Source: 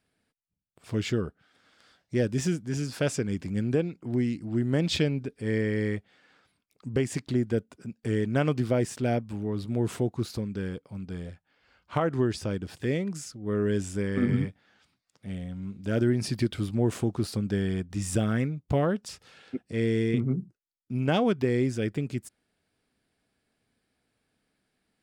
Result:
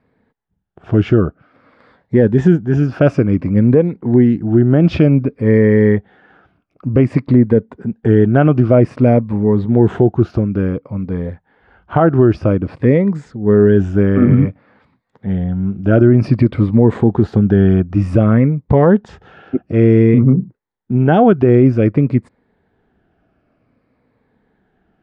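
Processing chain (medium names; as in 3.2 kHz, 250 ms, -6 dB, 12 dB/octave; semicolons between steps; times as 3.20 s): drifting ripple filter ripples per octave 0.97, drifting -0.54 Hz, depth 7 dB; low-pass 1.3 kHz 12 dB/octave; loudness maximiser +17.5 dB; trim -1 dB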